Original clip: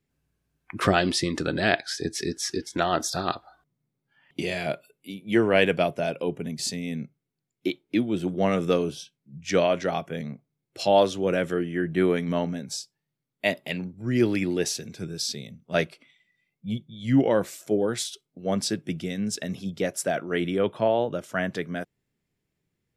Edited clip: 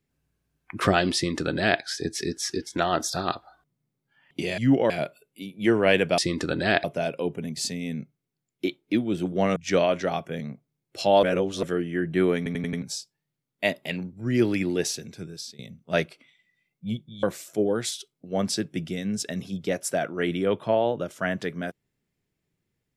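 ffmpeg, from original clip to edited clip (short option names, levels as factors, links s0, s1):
-filter_complex "[0:a]asplit=15[s0][s1][s2][s3][s4][s5][s6][s7][s8][s9][s10][s11][s12][s13][s14];[s0]atrim=end=4.582[s15];[s1]atrim=start=17.038:end=17.362[s16];[s2]atrim=start=4.578:end=5.862[s17];[s3]atrim=start=1.148:end=1.812[s18];[s4]atrim=start=5.858:end=8.582[s19];[s5]atrim=start=9.368:end=11.042[s20];[s6]atrim=start=11.038:end=11.442,asetpts=PTS-STARTPTS,areverse[s21];[s7]atrim=start=11.438:end=12.272[s22];[s8]atrim=start=12.178:end=12.272[s23];[s9]atrim=start=12.178:end=12.272[s24];[s10]atrim=start=12.178:end=12.272[s25];[s11]atrim=start=12.178:end=12.272[s26];[s12]atrim=start=12.628:end=15.4,asetpts=PTS-STARTPTS,afade=t=out:st=1.942:d=0.83:c=qsin:silence=0.112202[s27];[s13]atrim=start=15.4:end=17.042,asetpts=PTS-STARTPTS,afade=t=in:d=0.004:c=hsin:silence=0.112202[s28];[s14]atrim=start=17.358[s29];[s15][s16]acrossfade=d=0.004:c1=hsin:c2=hsin[s30];[s30][s17]acrossfade=d=0.004:c1=hsin:c2=hsin[s31];[s31][s18]acrossfade=d=0.004:c1=hsin:c2=hsin[s32];[s32][s19]acrossfade=d=0.004:c1=hsin:c2=hsin[s33];[s33][s20]acrossfade=d=0.004:c1=hsin:c2=hsin[s34];[s34][s21]acrossfade=d=0.004:c1=hsin:c2=hsin[s35];[s35][s22]acrossfade=d=0.004:c1=hsin:c2=hsin[s36];[s36][s23]acrossfade=d=0.004:c1=hsin:c2=hsin[s37];[s37][s24]acrossfade=d=0.004:c1=hsin:c2=hsin[s38];[s38][s25]acrossfade=d=0.004:c1=hsin:c2=hsin[s39];[s39][s26]acrossfade=d=0.004:c1=hsin:c2=hsin[s40];[s27][s28]concat=n=2:v=0:a=1[s41];[s40][s41]acrossfade=d=0.004:c1=hsin:c2=hsin[s42];[s42][s29]acrossfade=d=0.004:c1=hsin:c2=hsin"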